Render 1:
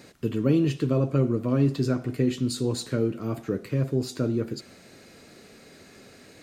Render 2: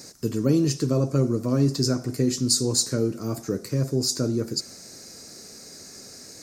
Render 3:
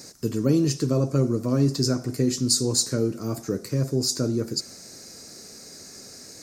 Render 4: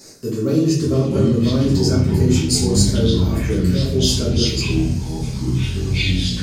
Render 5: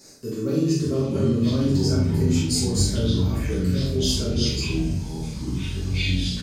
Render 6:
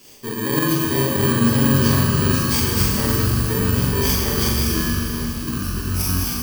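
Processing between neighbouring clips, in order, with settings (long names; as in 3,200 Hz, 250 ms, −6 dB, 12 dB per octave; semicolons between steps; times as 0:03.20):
high shelf with overshoot 4,100 Hz +10 dB, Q 3; level +1 dB
no processing that can be heard
delay with pitch and tempo change per echo 475 ms, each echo −6 semitones, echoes 3; rectangular room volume 91 cubic metres, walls mixed, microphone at 1.5 metres; level −3.5 dB
double-tracking delay 43 ms −4 dB; level −7 dB
samples in bit-reversed order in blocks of 32 samples; mains-hum notches 60/120/180 Hz; four-comb reverb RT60 3.5 s, combs from 26 ms, DRR 0.5 dB; level +2 dB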